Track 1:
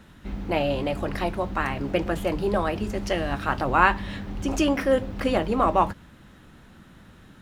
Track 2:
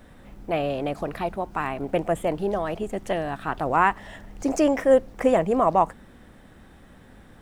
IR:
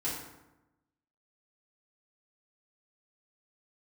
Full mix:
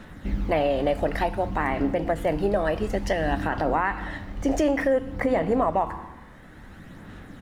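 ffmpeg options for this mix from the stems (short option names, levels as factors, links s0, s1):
-filter_complex "[0:a]aphaser=in_gain=1:out_gain=1:delay=1.7:decay=0.45:speed=0.56:type=sinusoidal,volume=1,asplit=2[s0][s1];[s1]volume=0.178[s2];[1:a]highshelf=f=2600:t=q:w=3:g=-7.5,adelay=3.9,volume=1.06,asplit=2[s3][s4];[s4]apad=whole_len=327106[s5];[s0][s5]sidechaincompress=threshold=0.0562:ratio=8:attack=16:release=1030[s6];[2:a]atrim=start_sample=2205[s7];[s2][s7]afir=irnorm=-1:irlink=0[s8];[s6][s3][s8]amix=inputs=3:normalize=0,alimiter=limit=0.211:level=0:latency=1:release=159"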